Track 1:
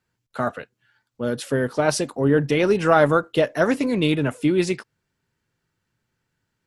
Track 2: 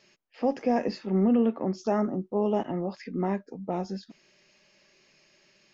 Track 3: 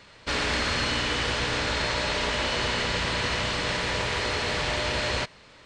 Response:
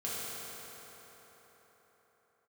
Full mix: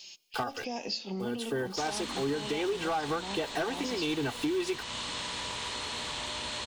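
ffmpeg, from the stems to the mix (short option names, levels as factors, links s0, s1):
-filter_complex "[0:a]acrusher=bits=8:dc=4:mix=0:aa=0.000001,aecho=1:1:2.6:0.96,volume=1.12[s0];[1:a]bandreject=f=111.6:t=h:w=4,bandreject=f=223.2:t=h:w=4,bandreject=f=334.8:t=h:w=4,bandreject=f=446.4:t=h:w=4,bandreject=f=558:t=h:w=4,bandreject=f=669.6:t=h:w=4,bandreject=f=781.2:t=h:w=4,bandreject=f=892.8:t=h:w=4,bandreject=f=1004.4:t=h:w=4,bandreject=f=1116:t=h:w=4,bandreject=f=1227.6:t=h:w=4,bandreject=f=1339.2:t=h:w=4,bandreject=f=1450.8:t=h:w=4,bandreject=f=1562.4:t=h:w=4,alimiter=limit=0.106:level=0:latency=1:release=227,aexciter=amount=11:drive=3.3:freq=2700,volume=0.531,asplit=3[s1][s2][s3];[s2]volume=0.0668[s4];[2:a]equalizer=f=250:t=o:w=0.67:g=8,equalizer=f=1000:t=o:w=0.67:g=10,equalizer=f=4000:t=o:w=0.67:g=9,aexciter=amount=3.6:drive=9.1:freq=6500,adelay=1500,volume=0.211[s5];[s3]apad=whole_len=293885[s6];[s0][s6]sidechaincompress=threshold=0.0141:ratio=8:attack=9.4:release=259[s7];[s7][s1]amix=inputs=2:normalize=0,equalizer=f=860:t=o:w=0.4:g=9,acompressor=threshold=0.158:ratio=4,volume=1[s8];[3:a]atrim=start_sample=2205[s9];[s4][s9]afir=irnorm=-1:irlink=0[s10];[s5][s8][s10]amix=inputs=3:normalize=0,equalizer=f=3200:w=1.7:g=6.5,asoftclip=type=hard:threshold=0.2,acompressor=threshold=0.02:ratio=2.5"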